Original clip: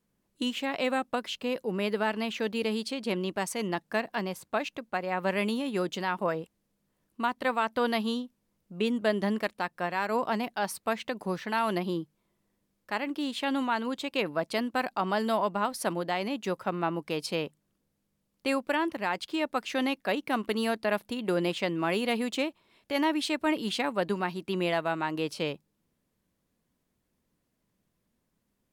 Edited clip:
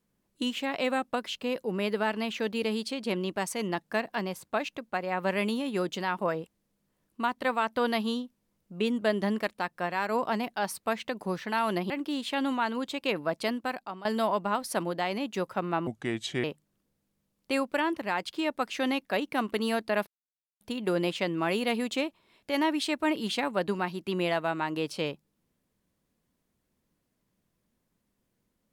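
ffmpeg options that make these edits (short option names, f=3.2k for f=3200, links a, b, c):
-filter_complex "[0:a]asplit=6[a][b][c][d][e][f];[a]atrim=end=11.902[g];[b]atrim=start=12.998:end=15.15,asetpts=PTS-STARTPTS,afade=t=out:st=1.572:d=0.58:silence=0.125893[h];[c]atrim=start=15.15:end=16.974,asetpts=PTS-STARTPTS,afade=t=in:d=0.004:c=hsin:silence=0.125893[i];[d]atrim=start=16.97:end=17.39,asetpts=PTS-STARTPTS,asetrate=32634,aresample=44100[j];[e]atrim=start=17.386:end=21.02,asetpts=PTS-STARTPTS,afade=t=out:st=3.63:d=0.004:c=hsin,apad=pad_dur=0.54[k];[f]atrim=start=21.02,asetpts=PTS-STARTPTS,afade=t=in:d=0.004:c=hsin[l];[h][i]concat=n=2:v=0:a=1[m];[g][m]acrossfade=d=0.004:c1=hsin:c2=hsin[n];[n][j]acrossfade=d=0.004:c1=hsin:c2=hsin[o];[k][l]concat=n=2:v=0:a=1[p];[o][p]acrossfade=d=0.004:c1=hsin:c2=hsin"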